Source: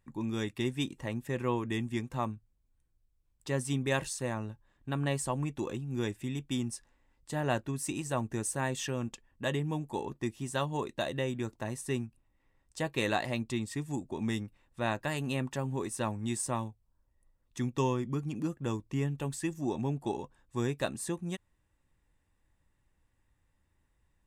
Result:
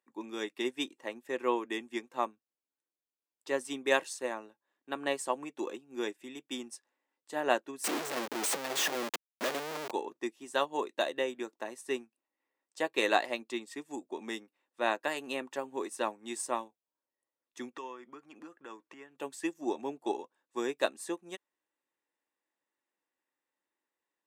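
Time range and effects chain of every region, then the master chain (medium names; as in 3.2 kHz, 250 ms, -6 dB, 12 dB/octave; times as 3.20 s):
7.84–9.91 s: resonant low shelf 100 Hz -12 dB, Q 3 + Schmitt trigger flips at -46.5 dBFS
17.73–19.16 s: compression 12:1, threshold -38 dBFS + low-pass 11 kHz + peaking EQ 1.5 kHz +11 dB 1.7 oct
whole clip: high-pass 310 Hz 24 dB/octave; peaking EQ 10 kHz -3.5 dB 1 oct; upward expansion 1.5:1, over -53 dBFS; trim +5 dB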